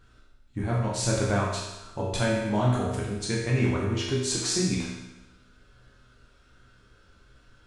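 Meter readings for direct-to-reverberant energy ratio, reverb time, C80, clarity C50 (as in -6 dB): -5.0 dB, 1.0 s, 3.5 dB, 0.5 dB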